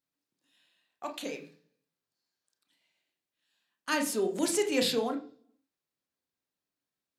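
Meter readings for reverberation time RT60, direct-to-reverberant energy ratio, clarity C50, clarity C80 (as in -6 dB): 0.45 s, 3.0 dB, 11.5 dB, 16.0 dB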